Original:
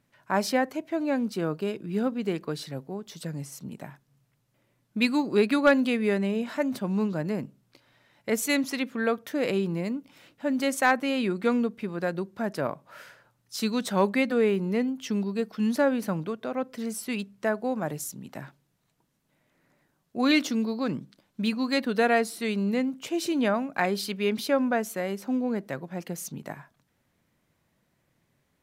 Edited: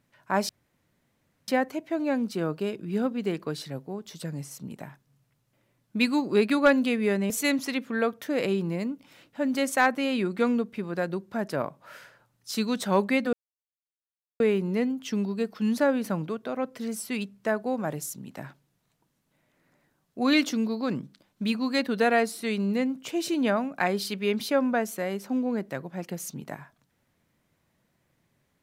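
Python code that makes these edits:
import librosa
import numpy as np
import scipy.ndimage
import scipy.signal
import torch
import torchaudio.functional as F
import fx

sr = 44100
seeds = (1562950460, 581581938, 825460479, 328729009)

y = fx.edit(x, sr, fx.insert_room_tone(at_s=0.49, length_s=0.99),
    fx.cut(start_s=6.31, length_s=2.04),
    fx.insert_silence(at_s=14.38, length_s=1.07), tone=tone)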